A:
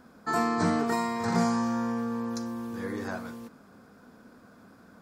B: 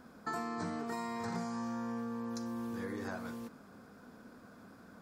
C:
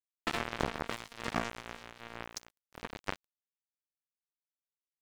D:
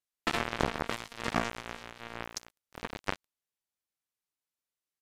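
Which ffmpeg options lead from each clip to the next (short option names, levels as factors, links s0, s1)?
-af "acompressor=threshold=0.0178:ratio=5,volume=0.841"
-filter_complex "[0:a]acrossover=split=3800[s0][s1];[s0]acrusher=bits=4:mix=0:aa=0.5[s2];[s2][s1]amix=inputs=2:normalize=0,aeval=exprs='sgn(val(0))*max(abs(val(0))-0.00355,0)':c=same,volume=3.55"
-af "aresample=32000,aresample=44100,volume=1.5"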